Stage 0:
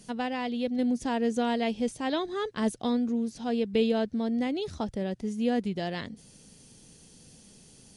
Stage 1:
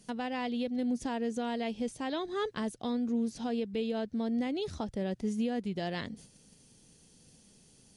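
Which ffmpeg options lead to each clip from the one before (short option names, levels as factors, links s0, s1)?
-af "agate=range=0.398:threshold=0.00282:ratio=16:detection=peak,alimiter=level_in=1.12:limit=0.0631:level=0:latency=1:release=479,volume=0.891,volume=1.19"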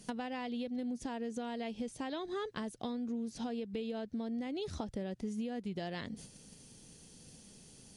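-af "acompressor=threshold=0.01:ratio=6,volume=1.58"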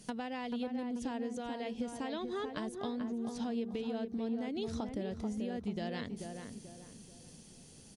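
-filter_complex "[0:a]asplit=2[s0][s1];[s1]adelay=436,lowpass=f=1500:p=1,volume=0.562,asplit=2[s2][s3];[s3]adelay=436,lowpass=f=1500:p=1,volume=0.39,asplit=2[s4][s5];[s5]adelay=436,lowpass=f=1500:p=1,volume=0.39,asplit=2[s6][s7];[s7]adelay=436,lowpass=f=1500:p=1,volume=0.39,asplit=2[s8][s9];[s9]adelay=436,lowpass=f=1500:p=1,volume=0.39[s10];[s0][s2][s4][s6][s8][s10]amix=inputs=6:normalize=0"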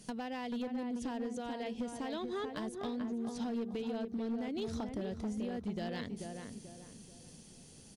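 -af "asoftclip=type=hard:threshold=0.0266"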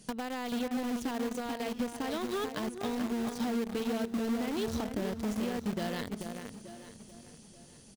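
-filter_complex "[0:a]asplit=2[s0][s1];[s1]acrusher=bits=5:mix=0:aa=0.000001,volume=0.596[s2];[s0][s2]amix=inputs=2:normalize=0,aecho=1:1:881|1762|2643:0.158|0.0491|0.0152"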